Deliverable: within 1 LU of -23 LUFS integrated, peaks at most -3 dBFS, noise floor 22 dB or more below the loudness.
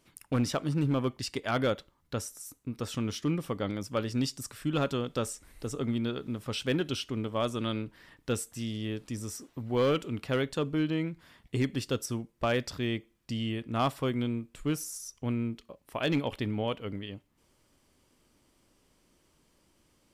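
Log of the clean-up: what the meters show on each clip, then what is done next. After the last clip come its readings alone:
clipped samples 0.4%; clipping level -20.5 dBFS; loudness -32.5 LUFS; peak level -20.5 dBFS; loudness target -23.0 LUFS
-> clip repair -20.5 dBFS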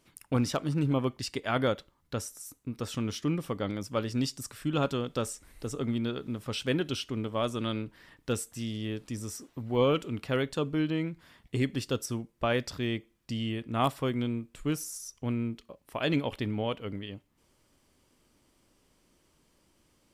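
clipped samples 0.0%; loudness -32.5 LUFS; peak level -13.0 dBFS; loudness target -23.0 LUFS
-> trim +9.5 dB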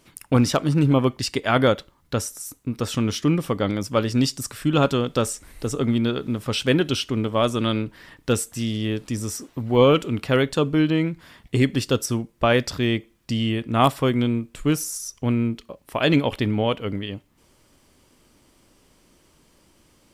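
loudness -23.0 LUFS; peak level -3.5 dBFS; noise floor -60 dBFS

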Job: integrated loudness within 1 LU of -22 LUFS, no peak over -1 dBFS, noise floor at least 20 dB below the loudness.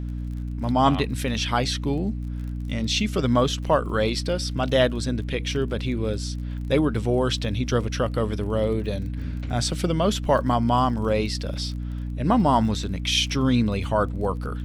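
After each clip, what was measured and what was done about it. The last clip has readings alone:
tick rate 31 per s; hum 60 Hz; highest harmonic 300 Hz; hum level -27 dBFS; loudness -24.0 LUFS; peak level -6.5 dBFS; loudness target -22.0 LUFS
-> de-click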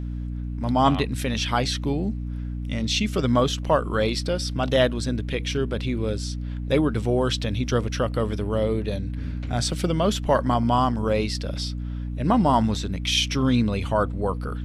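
tick rate 0 per s; hum 60 Hz; highest harmonic 300 Hz; hum level -27 dBFS
-> hum notches 60/120/180/240/300 Hz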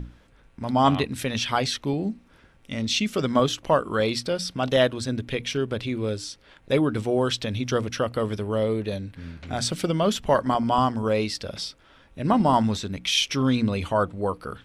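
hum not found; loudness -25.0 LUFS; peak level -7.0 dBFS; loudness target -22.0 LUFS
-> trim +3 dB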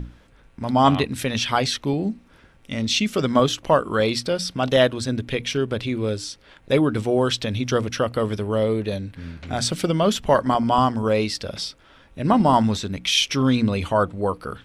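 loudness -22.0 LUFS; peak level -4.0 dBFS; noise floor -54 dBFS

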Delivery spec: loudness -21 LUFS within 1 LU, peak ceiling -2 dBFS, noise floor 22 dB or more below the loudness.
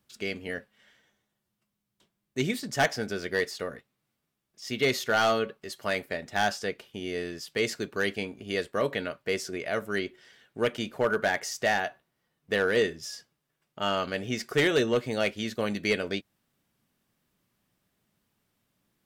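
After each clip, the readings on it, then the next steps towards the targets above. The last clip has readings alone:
clipped samples 0.3%; clipping level -17.0 dBFS; loudness -29.5 LUFS; peak level -17.0 dBFS; loudness target -21.0 LUFS
-> clip repair -17 dBFS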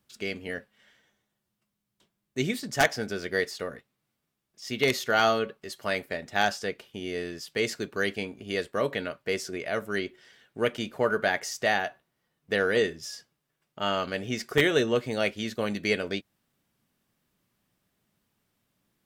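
clipped samples 0.0%; loudness -29.0 LUFS; peak level -8.0 dBFS; loudness target -21.0 LUFS
-> trim +8 dB; peak limiter -2 dBFS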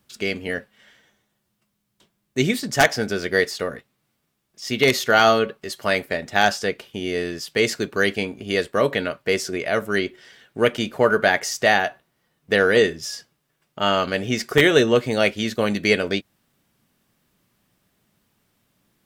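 loudness -21.0 LUFS; peak level -2.0 dBFS; noise floor -73 dBFS

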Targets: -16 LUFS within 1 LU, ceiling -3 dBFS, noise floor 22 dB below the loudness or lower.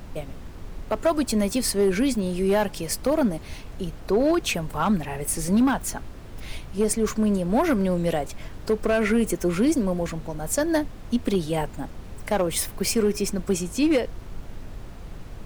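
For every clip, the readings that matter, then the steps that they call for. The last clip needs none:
clipped samples 0.8%; clipping level -14.5 dBFS; noise floor -40 dBFS; noise floor target -46 dBFS; loudness -24.0 LUFS; peak level -14.5 dBFS; loudness target -16.0 LUFS
-> clip repair -14.5 dBFS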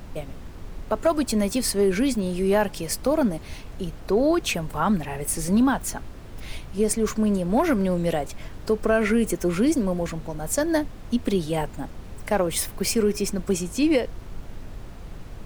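clipped samples 0.0%; noise floor -40 dBFS; noise floor target -46 dBFS
-> noise print and reduce 6 dB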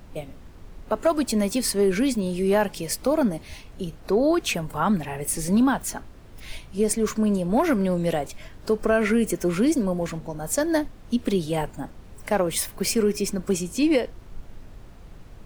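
noise floor -45 dBFS; noise floor target -46 dBFS
-> noise print and reduce 6 dB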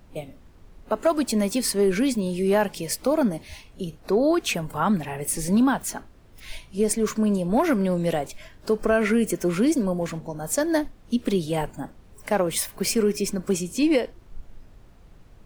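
noise floor -51 dBFS; loudness -24.0 LUFS; peak level -9.0 dBFS; loudness target -16.0 LUFS
-> trim +8 dB; peak limiter -3 dBFS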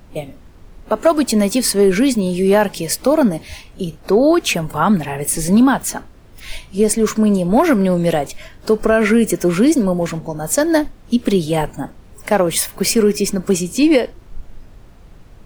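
loudness -16.0 LUFS; peak level -3.0 dBFS; noise floor -43 dBFS

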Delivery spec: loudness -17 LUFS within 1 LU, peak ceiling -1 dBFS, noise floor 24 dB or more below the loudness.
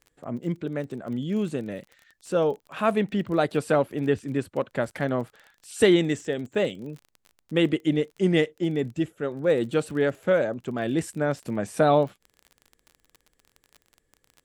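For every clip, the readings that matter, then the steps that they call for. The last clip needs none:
tick rate 29 per s; loudness -26.0 LUFS; peak level -6.5 dBFS; loudness target -17.0 LUFS
-> de-click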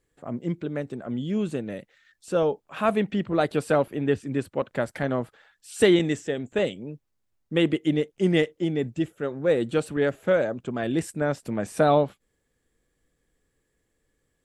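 tick rate 0 per s; loudness -25.5 LUFS; peak level -6.5 dBFS; loudness target -17.0 LUFS
-> trim +8.5 dB; peak limiter -1 dBFS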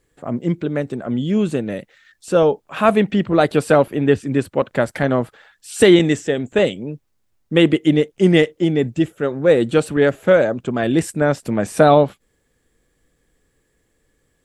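loudness -17.5 LUFS; peak level -1.0 dBFS; noise floor -67 dBFS

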